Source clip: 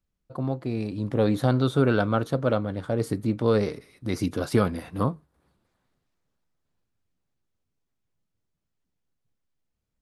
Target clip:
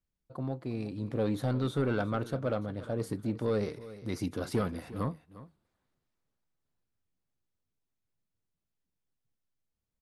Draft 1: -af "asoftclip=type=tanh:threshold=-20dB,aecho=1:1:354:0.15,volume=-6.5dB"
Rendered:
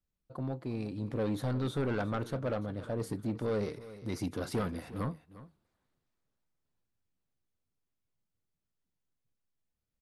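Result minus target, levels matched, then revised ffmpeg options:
soft clipping: distortion +6 dB
-af "asoftclip=type=tanh:threshold=-14dB,aecho=1:1:354:0.15,volume=-6.5dB"

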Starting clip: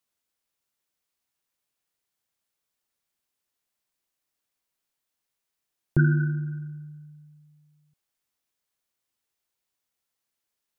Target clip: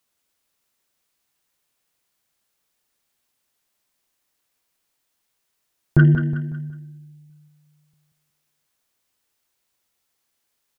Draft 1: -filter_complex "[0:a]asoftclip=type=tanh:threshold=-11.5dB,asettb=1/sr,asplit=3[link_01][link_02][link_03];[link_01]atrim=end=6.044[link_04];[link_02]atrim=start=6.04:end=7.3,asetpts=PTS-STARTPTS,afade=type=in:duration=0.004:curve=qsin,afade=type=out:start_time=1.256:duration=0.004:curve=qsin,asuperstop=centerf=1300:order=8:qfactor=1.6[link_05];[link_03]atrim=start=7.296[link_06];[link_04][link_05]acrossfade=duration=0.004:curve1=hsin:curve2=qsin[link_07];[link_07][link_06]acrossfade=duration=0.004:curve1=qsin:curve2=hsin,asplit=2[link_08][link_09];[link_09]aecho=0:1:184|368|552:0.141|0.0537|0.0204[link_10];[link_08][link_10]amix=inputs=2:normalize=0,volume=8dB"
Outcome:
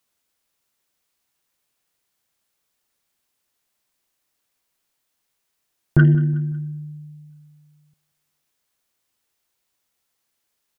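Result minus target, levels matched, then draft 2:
echo-to-direct −10 dB
-filter_complex "[0:a]asoftclip=type=tanh:threshold=-11.5dB,asettb=1/sr,asplit=3[link_01][link_02][link_03];[link_01]atrim=end=6.044[link_04];[link_02]atrim=start=6.04:end=7.3,asetpts=PTS-STARTPTS,afade=type=in:duration=0.004:curve=qsin,afade=type=out:start_time=1.256:duration=0.004:curve=qsin,asuperstop=centerf=1300:order=8:qfactor=1.6[link_05];[link_03]atrim=start=7.296[link_06];[link_04][link_05]acrossfade=duration=0.004:curve1=hsin:curve2=qsin[link_07];[link_07][link_06]acrossfade=duration=0.004:curve1=qsin:curve2=hsin,asplit=2[link_08][link_09];[link_09]aecho=0:1:184|368|552|736:0.447|0.17|0.0645|0.0245[link_10];[link_08][link_10]amix=inputs=2:normalize=0,volume=8dB"

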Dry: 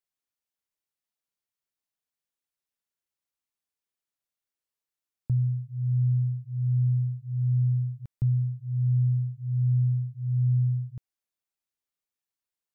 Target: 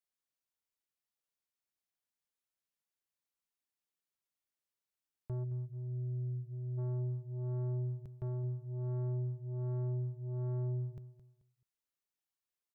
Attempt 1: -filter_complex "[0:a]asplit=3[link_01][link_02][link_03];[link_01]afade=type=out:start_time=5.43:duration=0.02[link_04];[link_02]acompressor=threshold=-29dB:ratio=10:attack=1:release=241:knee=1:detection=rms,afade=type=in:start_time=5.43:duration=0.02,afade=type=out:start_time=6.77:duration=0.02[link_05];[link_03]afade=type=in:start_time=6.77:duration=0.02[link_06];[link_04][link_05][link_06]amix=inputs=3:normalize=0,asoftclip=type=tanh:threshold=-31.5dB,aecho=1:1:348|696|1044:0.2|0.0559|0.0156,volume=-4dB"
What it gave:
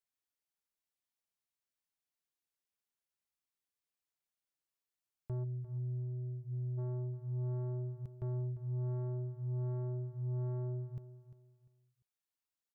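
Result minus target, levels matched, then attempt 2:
echo 131 ms late
-filter_complex "[0:a]asplit=3[link_01][link_02][link_03];[link_01]afade=type=out:start_time=5.43:duration=0.02[link_04];[link_02]acompressor=threshold=-29dB:ratio=10:attack=1:release=241:knee=1:detection=rms,afade=type=in:start_time=5.43:duration=0.02,afade=type=out:start_time=6.77:duration=0.02[link_05];[link_03]afade=type=in:start_time=6.77:duration=0.02[link_06];[link_04][link_05][link_06]amix=inputs=3:normalize=0,asoftclip=type=tanh:threshold=-31.5dB,aecho=1:1:217|434|651:0.2|0.0559|0.0156,volume=-4dB"

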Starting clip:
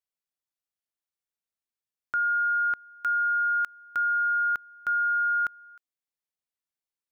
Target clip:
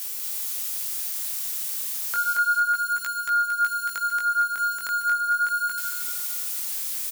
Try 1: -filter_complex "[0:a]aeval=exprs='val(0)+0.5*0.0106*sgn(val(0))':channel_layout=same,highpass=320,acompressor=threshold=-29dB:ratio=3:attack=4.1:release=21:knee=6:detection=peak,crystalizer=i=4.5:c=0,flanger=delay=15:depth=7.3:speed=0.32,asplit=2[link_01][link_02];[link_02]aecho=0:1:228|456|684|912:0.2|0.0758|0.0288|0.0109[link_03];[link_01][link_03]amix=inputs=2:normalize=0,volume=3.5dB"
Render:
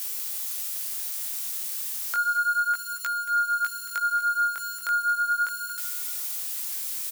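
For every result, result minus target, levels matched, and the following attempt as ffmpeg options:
125 Hz band −11.5 dB; echo-to-direct −12 dB
-filter_complex "[0:a]aeval=exprs='val(0)+0.5*0.0106*sgn(val(0))':channel_layout=same,highpass=120,acompressor=threshold=-29dB:ratio=3:attack=4.1:release=21:knee=6:detection=peak,crystalizer=i=4.5:c=0,flanger=delay=15:depth=7.3:speed=0.32,asplit=2[link_01][link_02];[link_02]aecho=0:1:228|456|684|912:0.2|0.0758|0.0288|0.0109[link_03];[link_01][link_03]amix=inputs=2:normalize=0,volume=3.5dB"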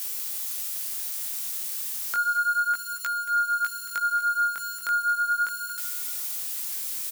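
echo-to-direct −12 dB
-filter_complex "[0:a]aeval=exprs='val(0)+0.5*0.0106*sgn(val(0))':channel_layout=same,highpass=120,acompressor=threshold=-29dB:ratio=3:attack=4.1:release=21:knee=6:detection=peak,crystalizer=i=4.5:c=0,flanger=delay=15:depth=7.3:speed=0.32,asplit=2[link_01][link_02];[link_02]aecho=0:1:228|456|684|912|1140:0.794|0.302|0.115|0.0436|0.0166[link_03];[link_01][link_03]amix=inputs=2:normalize=0,volume=3.5dB"

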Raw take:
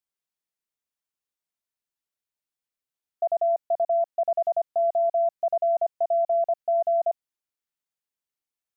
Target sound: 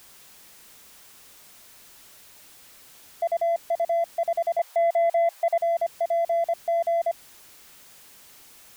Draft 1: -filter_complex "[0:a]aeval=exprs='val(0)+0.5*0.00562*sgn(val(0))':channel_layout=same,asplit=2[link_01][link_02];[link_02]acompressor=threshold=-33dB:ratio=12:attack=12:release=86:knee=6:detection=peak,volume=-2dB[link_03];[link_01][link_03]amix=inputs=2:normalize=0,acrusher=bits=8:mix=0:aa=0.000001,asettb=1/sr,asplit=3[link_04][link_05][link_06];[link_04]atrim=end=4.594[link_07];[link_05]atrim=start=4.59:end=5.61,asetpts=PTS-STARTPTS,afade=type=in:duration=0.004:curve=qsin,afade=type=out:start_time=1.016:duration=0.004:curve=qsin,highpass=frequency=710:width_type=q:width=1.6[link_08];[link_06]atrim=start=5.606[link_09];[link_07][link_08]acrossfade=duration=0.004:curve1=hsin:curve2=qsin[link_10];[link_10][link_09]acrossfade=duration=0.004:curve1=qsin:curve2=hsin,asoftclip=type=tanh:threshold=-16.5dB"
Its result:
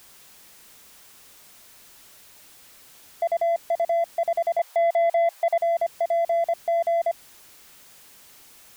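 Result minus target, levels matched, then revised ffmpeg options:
downward compressor: peak gain reduction +12 dB
-filter_complex "[0:a]aeval=exprs='val(0)+0.5*0.00562*sgn(val(0))':channel_layout=same,acrusher=bits=8:mix=0:aa=0.000001,asettb=1/sr,asplit=3[link_01][link_02][link_03];[link_01]atrim=end=4.594[link_04];[link_02]atrim=start=4.59:end=5.61,asetpts=PTS-STARTPTS,afade=type=in:duration=0.004:curve=qsin,afade=type=out:start_time=1.016:duration=0.004:curve=qsin,highpass=frequency=710:width_type=q:width=1.6[link_05];[link_03]atrim=start=5.606[link_06];[link_04][link_05]acrossfade=duration=0.004:curve1=hsin:curve2=qsin[link_07];[link_07][link_06]acrossfade=duration=0.004:curve1=qsin:curve2=hsin,asoftclip=type=tanh:threshold=-16.5dB"

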